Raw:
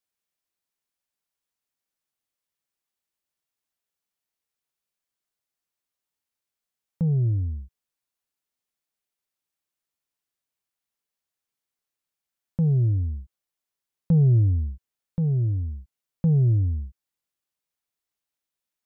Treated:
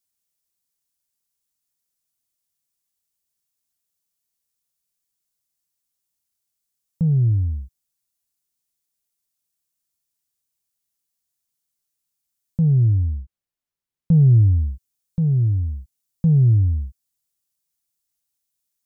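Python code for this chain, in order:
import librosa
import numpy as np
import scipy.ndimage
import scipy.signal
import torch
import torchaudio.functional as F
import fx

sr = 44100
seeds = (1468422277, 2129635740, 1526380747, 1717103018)

y = fx.bass_treble(x, sr, bass_db=9, treble_db=fx.steps((0.0, 13.0), (12.75, -1.0), (14.41, 14.0)))
y = F.gain(torch.from_numpy(y), -3.5).numpy()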